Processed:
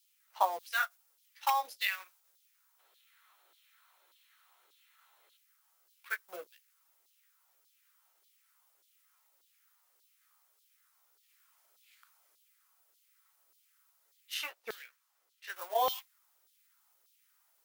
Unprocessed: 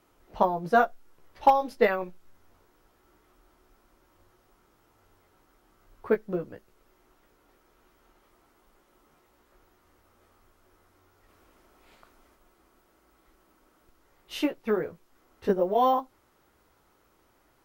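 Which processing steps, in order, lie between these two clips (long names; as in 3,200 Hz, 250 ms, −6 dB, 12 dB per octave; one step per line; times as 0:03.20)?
mu-law and A-law mismatch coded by A
first-order pre-emphasis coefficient 0.97
0:02.79–0:05.37: gain on a spectral selection 310–4,400 Hz +10 dB
high-shelf EQ 6,800 Hz −2.5 dB, from 0:14.34 −10 dB, from 0:15.56 −2 dB
auto-filter high-pass saw down 1.7 Hz 410–4,000 Hz
level +8.5 dB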